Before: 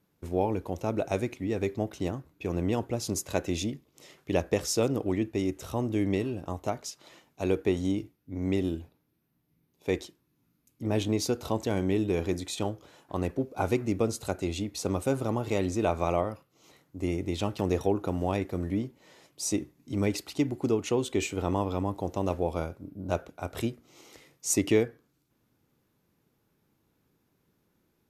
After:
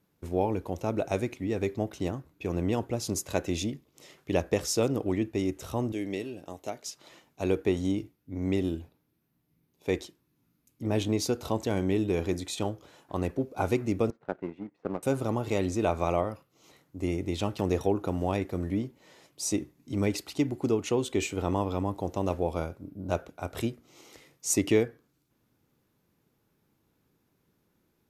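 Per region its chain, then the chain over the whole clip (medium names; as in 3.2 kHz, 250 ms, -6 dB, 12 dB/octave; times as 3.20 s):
5.92–6.86 s: high-pass 450 Hz 6 dB/octave + peaking EQ 1.1 kHz -9 dB 1 oct
14.10–15.03 s: Chebyshev band-pass 150–1900 Hz, order 3 + power-law waveshaper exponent 1.4
whole clip: none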